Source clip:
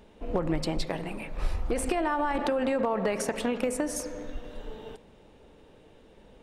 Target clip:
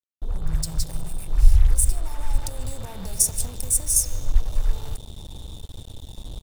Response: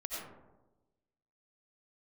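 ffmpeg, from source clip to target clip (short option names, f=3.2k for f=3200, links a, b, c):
-filter_complex "[0:a]lowshelf=f=310:g=9.5,asplit=2[a][b];[b]adelay=142,lowpass=f=2k:p=1,volume=-18dB,asplit=2[c][d];[d]adelay=142,lowpass=f=2k:p=1,volume=0.46,asplit=2[e][f];[f]adelay=142,lowpass=f=2k:p=1,volume=0.46,asplit=2[g][h];[h]adelay=142,lowpass=f=2k:p=1,volume=0.46[i];[a][c][e][g][i]amix=inputs=5:normalize=0,acrossover=split=160|5200[j][k][l];[k]acompressor=threshold=-37dB:ratio=6[m];[l]acrusher=bits=3:mode=log:mix=0:aa=0.000001[n];[j][m][n]amix=inputs=3:normalize=0,aeval=exprs='val(0)+0.00178*sin(2*PI*3600*n/s)':c=same,firequalizer=gain_entry='entry(110,0);entry(220,-24);entry(860,-10);entry(1400,-28);entry(5300,3);entry(10000,9)':delay=0.05:min_phase=1,dynaudnorm=f=300:g=3:m=15dB,asettb=1/sr,asplit=3[o][p][q];[o]atrim=end=0.554[r];[p]atrim=start=0.55:end=0.95,asetpts=PTS-STARTPTS,afade=t=in:d=0.004:c=qsin,afade=t=out:st=0.396:d=0.004:c=qsin,highpass=f=61:p=1[s];[q]atrim=start=0.946[t];[r][s]acrossfade=d=0.004:c1=hsin:c2=qsin[u];[u][t]acrossfade=d=0.004:c1=qsin:c2=hsin,acrusher=bits=5:mix=0:aa=0.5,volume=-1dB"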